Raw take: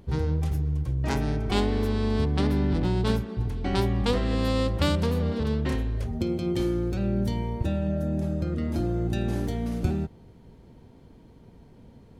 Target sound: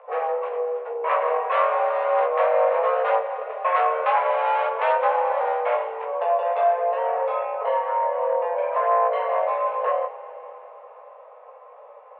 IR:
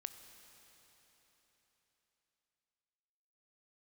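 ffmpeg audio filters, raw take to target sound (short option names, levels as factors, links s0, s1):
-filter_complex "[0:a]equalizer=f=710:t=o:w=0.31:g=15,asoftclip=type=hard:threshold=0.0944,flanger=delay=17:depth=4:speed=1,asplit=2[s0][s1];[1:a]atrim=start_sample=2205[s2];[s1][s2]afir=irnorm=-1:irlink=0,volume=2.82[s3];[s0][s3]amix=inputs=2:normalize=0,highpass=f=150:t=q:w=0.5412,highpass=f=150:t=q:w=1.307,lowpass=f=2300:t=q:w=0.5176,lowpass=f=2300:t=q:w=0.7071,lowpass=f=2300:t=q:w=1.932,afreqshift=340"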